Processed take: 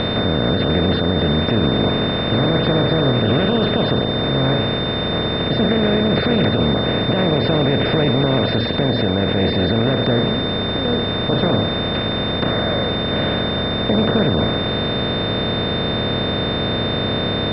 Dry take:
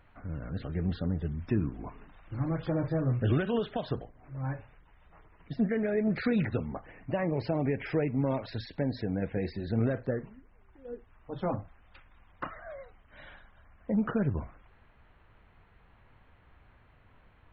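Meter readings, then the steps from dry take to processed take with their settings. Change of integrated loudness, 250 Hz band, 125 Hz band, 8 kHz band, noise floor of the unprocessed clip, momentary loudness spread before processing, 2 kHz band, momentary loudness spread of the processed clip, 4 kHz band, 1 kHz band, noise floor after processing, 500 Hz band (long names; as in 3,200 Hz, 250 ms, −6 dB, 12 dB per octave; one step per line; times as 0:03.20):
+14.0 dB, +14.0 dB, +14.0 dB, can't be measured, −61 dBFS, 17 LU, +18.5 dB, 3 LU, +33.5 dB, +18.5 dB, −21 dBFS, +16.0 dB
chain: compressor on every frequency bin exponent 0.2
steady tone 3,600 Hz −29 dBFS
boost into a limiter +10.5 dB
level −5.5 dB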